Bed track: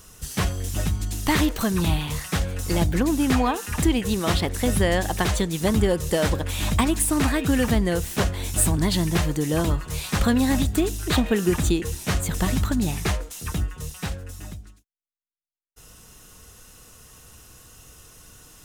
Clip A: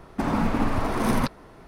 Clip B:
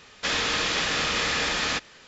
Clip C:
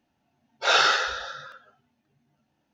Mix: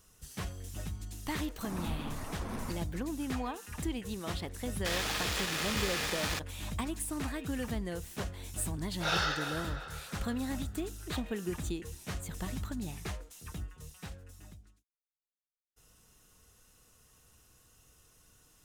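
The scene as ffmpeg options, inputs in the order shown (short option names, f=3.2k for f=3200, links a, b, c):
-filter_complex "[0:a]volume=-15dB[a];[2:a]acrusher=bits=3:mix=0:aa=0.5[b];[3:a]asplit=2[c][d];[d]adelay=347,lowpass=f=3.3k:p=1,volume=-9.5dB,asplit=2[e][f];[f]adelay=347,lowpass=f=3.3k:p=1,volume=0.5,asplit=2[g][h];[h]adelay=347,lowpass=f=3.3k:p=1,volume=0.5,asplit=2[i][j];[j]adelay=347,lowpass=f=3.3k:p=1,volume=0.5,asplit=2[k][l];[l]adelay=347,lowpass=f=3.3k:p=1,volume=0.5,asplit=2[m][n];[n]adelay=347,lowpass=f=3.3k:p=1,volume=0.5[o];[c][e][g][i][k][m][o]amix=inputs=7:normalize=0[p];[1:a]atrim=end=1.67,asetpts=PTS-STARTPTS,volume=-17dB,afade=t=in:d=0.004:c=hsin,afade=t=out:st=1.666:d=0.004:c=hsin,adelay=1450[q];[b]atrim=end=2.07,asetpts=PTS-STARTPTS,volume=-9dB,afade=t=in:d=0.004:c=hsin,afade=t=out:st=2.066:d=0.004:c=hsin,adelay=203301S[r];[p]atrim=end=2.73,asetpts=PTS-STARTPTS,volume=-11.5dB,afade=t=in:d=0.004:c=hsin,afade=t=out:st=2.726:d=0.004:c=hsin,adelay=8380[s];[a][q][r][s]amix=inputs=4:normalize=0"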